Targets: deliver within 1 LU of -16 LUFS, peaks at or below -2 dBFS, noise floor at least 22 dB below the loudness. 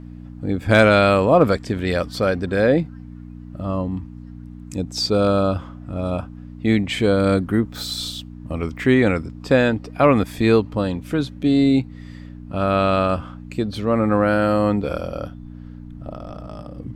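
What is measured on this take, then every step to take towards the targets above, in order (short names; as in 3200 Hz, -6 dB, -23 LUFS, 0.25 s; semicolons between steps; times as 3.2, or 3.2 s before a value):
hum 60 Hz; harmonics up to 300 Hz; hum level -35 dBFS; loudness -19.5 LUFS; peak -3.0 dBFS; loudness target -16.0 LUFS
-> de-hum 60 Hz, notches 5; gain +3.5 dB; limiter -2 dBFS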